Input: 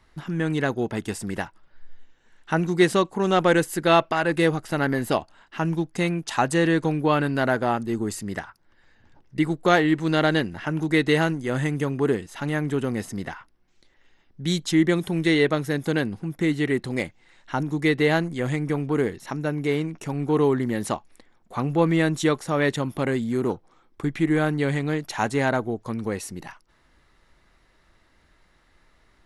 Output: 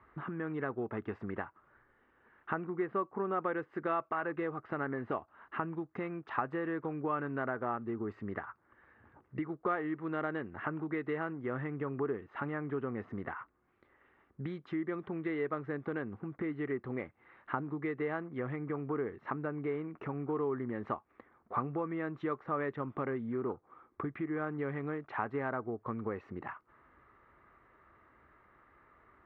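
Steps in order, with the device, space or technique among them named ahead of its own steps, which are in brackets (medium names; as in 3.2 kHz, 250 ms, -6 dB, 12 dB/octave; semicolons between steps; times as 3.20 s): 2.64–3.43 s: low-pass 2.6 kHz 12 dB/octave; bass amplifier (compression 4:1, threshold -34 dBFS, peak gain reduction 17.5 dB; cabinet simulation 75–2100 Hz, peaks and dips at 170 Hz -6 dB, 410 Hz +4 dB, 1.2 kHz +10 dB); trim -2 dB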